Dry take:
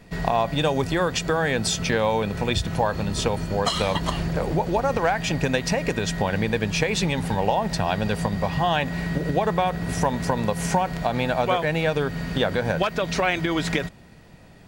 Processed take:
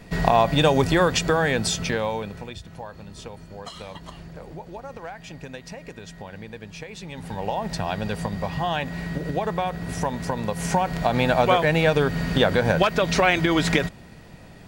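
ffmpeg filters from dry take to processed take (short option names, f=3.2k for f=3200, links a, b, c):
-af "volume=22.5dB,afade=t=out:st=0.95:d=1.02:silence=0.446684,afade=t=out:st=1.97:d=0.57:silence=0.251189,afade=t=in:st=7.04:d=0.63:silence=0.266073,afade=t=in:st=10.45:d=0.84:silence=0.446684"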